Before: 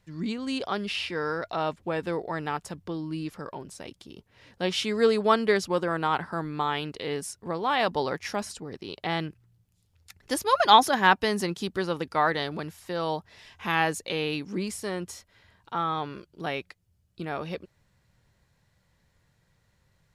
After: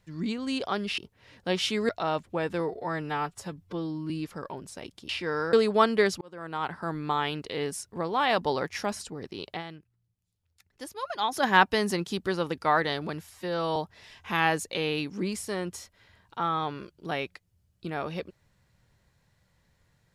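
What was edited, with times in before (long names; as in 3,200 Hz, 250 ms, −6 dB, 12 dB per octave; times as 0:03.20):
0:00.98–0:01.42: swap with 0:04.12–0:05.03
0:02.13–0:03.13: time-stretch 1.5×
0:05.71–0:06.48: fade in
0:09.00–0:10.94: duck −12.5 dB, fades 0.13 s
0:12.81–0:13.11: time-stretch 1.5×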